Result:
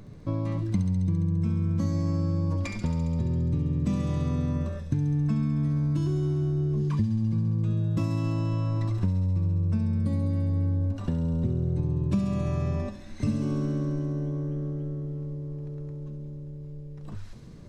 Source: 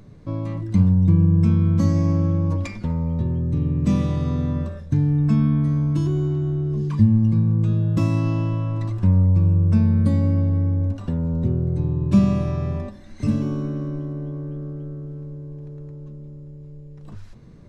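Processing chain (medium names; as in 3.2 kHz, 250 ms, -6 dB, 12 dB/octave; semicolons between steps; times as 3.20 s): compression, threshold -23 dBFS, peak gain reduction 13 dB; on a send: feedback echo behind a high-pass 68 ms, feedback 81%, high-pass 3.4 kHz, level -5 dB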